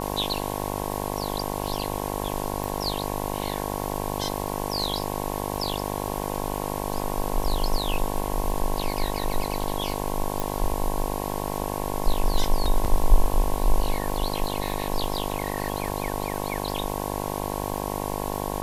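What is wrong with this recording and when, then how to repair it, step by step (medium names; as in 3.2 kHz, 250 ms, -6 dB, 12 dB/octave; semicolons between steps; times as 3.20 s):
buzz 50 Hz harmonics 22 -30 dBFS
crackle 34 per s -30 dBFS
2.64 s: pop
10.40 s: pop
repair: de-click; de-hum 50 Hz, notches 22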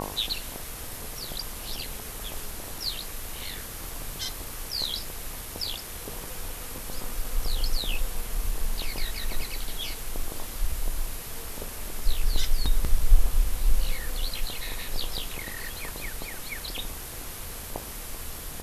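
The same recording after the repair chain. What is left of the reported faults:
nothing left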